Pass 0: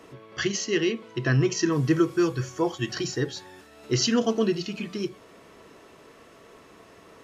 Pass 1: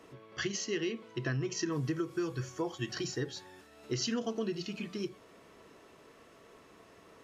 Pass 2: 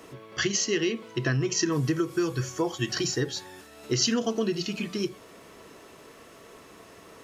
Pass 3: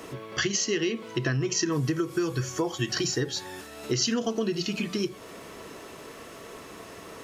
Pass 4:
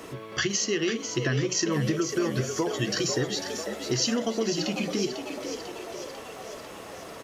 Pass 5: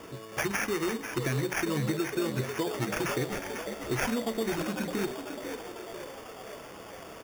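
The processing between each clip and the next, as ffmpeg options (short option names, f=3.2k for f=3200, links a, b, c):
-af "acompressor=threshold=-23dB:ratio=10,volume=-6.5dB"
-af "highshelf=f=6.4k:g=8,volume=7.5dB"
-af "acompressor=threshold=-35dB:ratio=2,volume=6dB"
-filter_complex "[0:a]asplit=9[a][b][c][d][e][f][g][h][i];[b]adelay=496,afreqshift=77,volume=-8dB[j];[c]adelay=992,afreqshift=154,volume=-12.2dB[k];[d]adelay=1488,afreqshift=231,volume=-16.3dB[l];[e]adelay=1984,afreqshift=308,volume=-20.5dB[m];[f]adelay=2480,afreqshift=385,volume=-24.6dB[n];[g]adelay=2976,afreqshift=462,volume=-28.8dB[o];[h]adelay=3472,afreqshift=539,volume=-32.9dB[p];[i]adelay=3968,afreqshift=616,volume=-37.1dB[q];[a][j][k][l][m][n][o][p][q]amix=inputs=9:normalize=0"
-af "acrusher=samples=11:mix=1:aa=0.000001,volume=-3.5dB"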